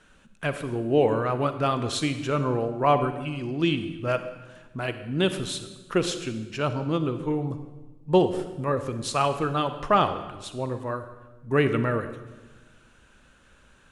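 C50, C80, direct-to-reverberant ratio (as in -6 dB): 10.0 dB, 11.5 dB, 9.5 dB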